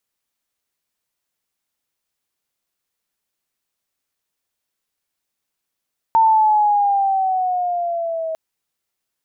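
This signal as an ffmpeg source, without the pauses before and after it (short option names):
-f lavfi -i "aevalsrc='pow(10,(-9.5-12*t/2.2)/20)*sin(2*PI*904*2.2/(-6*log(2)/12)*(exp(-6*log(2)/12*t/2.2)-1))':d=2.2:s=44100"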